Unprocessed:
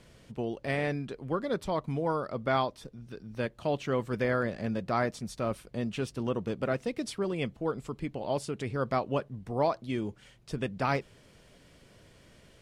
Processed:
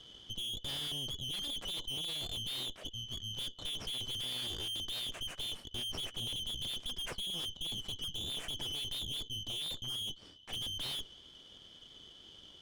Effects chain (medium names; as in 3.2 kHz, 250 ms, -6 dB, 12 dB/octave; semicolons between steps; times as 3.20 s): four frequency bands reordered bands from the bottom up 3412; peaking EQ 3.3 kHz +9 dB 0.53 oct; valve stage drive 37 dB, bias 0.8; treble shelf 2.2 kHz -11.5 dB; trim +7 dB